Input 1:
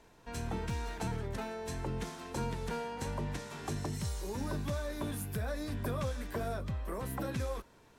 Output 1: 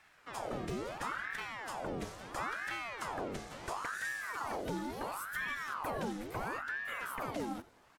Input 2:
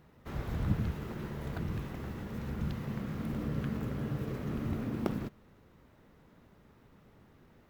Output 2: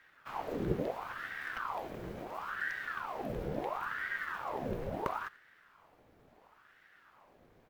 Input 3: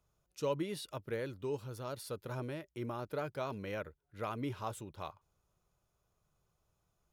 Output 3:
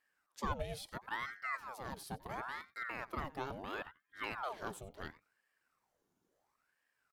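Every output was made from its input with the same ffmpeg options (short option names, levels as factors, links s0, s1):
-af "aecho=1:1:90:0.1,aeval=exprs='val(0)*sin(2*PI*1000*n/s+1000*0.75/0.73*sin(2*PI*0.73*n/s))':c=same"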